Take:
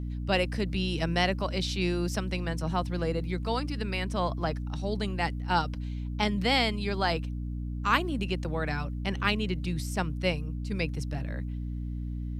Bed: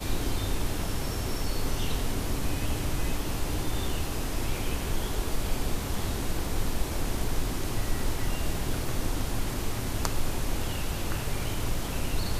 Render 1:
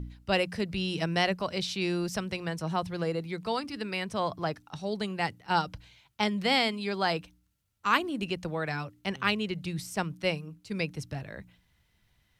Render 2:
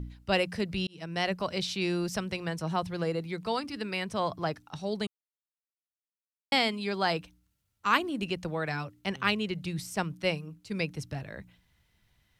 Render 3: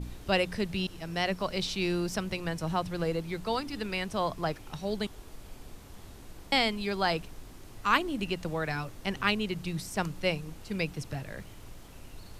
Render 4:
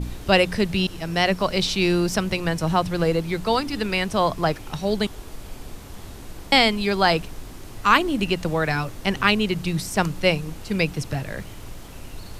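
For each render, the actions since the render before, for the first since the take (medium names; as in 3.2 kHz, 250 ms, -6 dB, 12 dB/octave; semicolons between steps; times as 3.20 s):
de-hum 60 Hz, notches 5
0.87–1.40 s: fade in; 5.07–6.52 s: mute
add bed -18 dB
trim +9.5 dB; peak limiter -3 dBFS, peak gain reduction 2.5 dB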